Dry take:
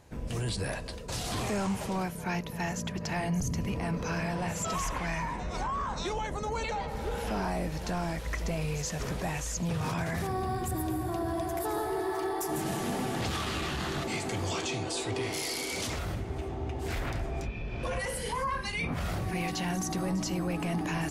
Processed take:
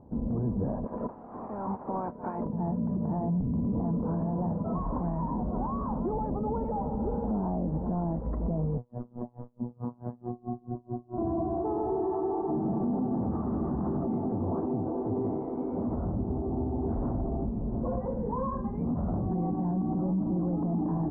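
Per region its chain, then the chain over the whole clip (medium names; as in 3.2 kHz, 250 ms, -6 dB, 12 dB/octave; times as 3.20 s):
0.83–2.45 s: spectral peaks clipped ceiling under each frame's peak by 12 dB + pre-emphasis filter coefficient 0.97 + level flattener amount 100%
8.77–11.18 s: robot voice 121 Hz + logarithmic tremolo 4.6 Hz, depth 33 dB
whole clip: steep low-pass 1 kHz 36 dB/octave; peaking EQ 230 Hz +13 dB 0.74 oct; peak limiter -24.5 dBFS; trim +2 dB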